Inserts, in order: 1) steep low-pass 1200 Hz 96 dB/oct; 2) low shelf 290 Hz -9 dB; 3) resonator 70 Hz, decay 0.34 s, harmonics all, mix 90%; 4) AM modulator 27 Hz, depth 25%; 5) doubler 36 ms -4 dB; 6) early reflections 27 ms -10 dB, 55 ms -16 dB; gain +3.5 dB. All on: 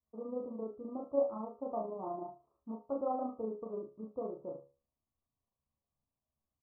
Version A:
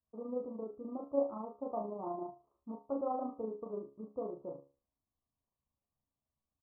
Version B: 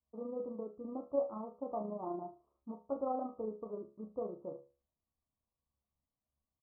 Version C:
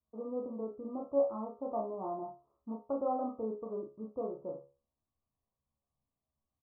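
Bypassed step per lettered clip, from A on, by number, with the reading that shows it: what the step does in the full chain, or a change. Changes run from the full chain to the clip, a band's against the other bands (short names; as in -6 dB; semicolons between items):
6, echo-to-direct -9.0 dB to none; 5, 125 Hz band +2.0 dB; 4, crest factor change -1.5 dB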